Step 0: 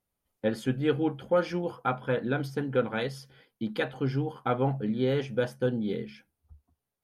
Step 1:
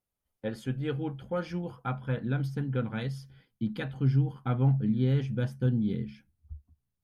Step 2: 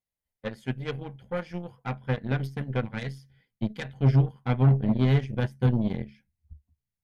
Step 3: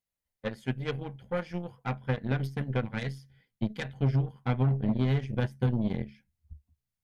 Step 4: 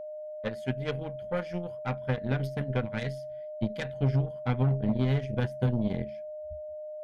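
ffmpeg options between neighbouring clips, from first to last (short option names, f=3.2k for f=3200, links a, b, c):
-af "asubboost=boost=8:cutoff=180,volume=-6dB"
-af "equalizer=f=315:t=o:w=0.33:g=-8,equalizer=f=1.25k:t=o:w=0.33:g=-9,equalizer=f=2k:t=o:w=0.33:g=7,aeval=exprs='0.168*(cos(1*acos(clip(val(0)/0.168,-1,1)))-cos(1*PI/2))+0.015*(cos(4*acos(clip(val(0)/0.168,-1,1)))-cos(4*PI/2))+0.0133*(cos(6*acos(clip(val(0)/0.168,-1,1)))-cos(6*PI/2))+0.0168*(cos(7*acos(clip(val(0)/0.168,-1,1)))-cos(7*PI/2))':c=same,volume=4.5dB"
-af "acompressor=threshold=-22dB:ratio=6"
-af "aeval=exprs='val(0)+0.0141*sin(2*PI*610*n/s)':c=same"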